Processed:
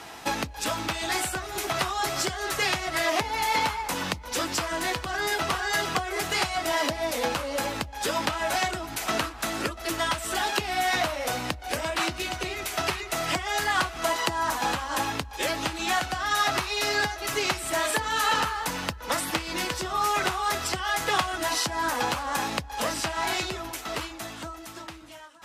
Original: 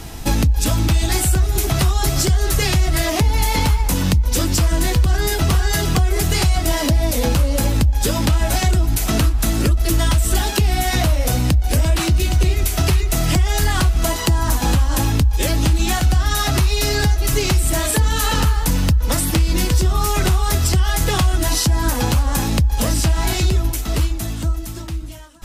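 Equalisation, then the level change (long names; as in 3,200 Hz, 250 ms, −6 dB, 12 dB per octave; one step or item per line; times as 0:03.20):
high-pass filter 1,100 Hz 12 dB per octave
spectral tilt −4.5 dB per octave
+3.5 dB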